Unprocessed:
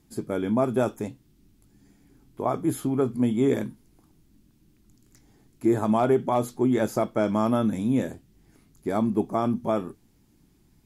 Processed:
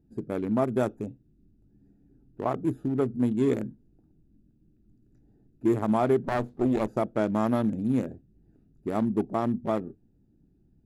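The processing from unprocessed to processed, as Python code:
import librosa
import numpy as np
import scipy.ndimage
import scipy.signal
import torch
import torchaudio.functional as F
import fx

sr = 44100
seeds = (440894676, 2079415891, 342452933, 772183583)

y = fx.wiener(x, sr, points=41)
y = fx.running_max(y, sr, window=17, at=(6.24, 6.88))
y = F.gain(torch.from_numpy(y), -1.5).numpy()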